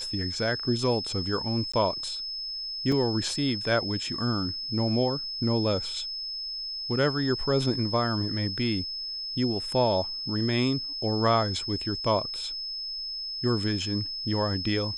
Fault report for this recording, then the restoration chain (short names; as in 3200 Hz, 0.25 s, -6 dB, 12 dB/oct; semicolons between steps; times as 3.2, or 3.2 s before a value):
tone 5200 Hz -32 dBFS
1.72–1.74 gap 15 ms
2.92 gap 2.8 ms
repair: notch 5200 Hz, Q 30; interpolate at 1.72, 15 ms; interpolate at 2.92, 2.8 ms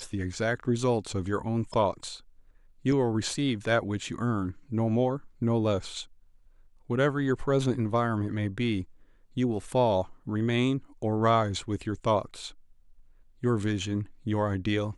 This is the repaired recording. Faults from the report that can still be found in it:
none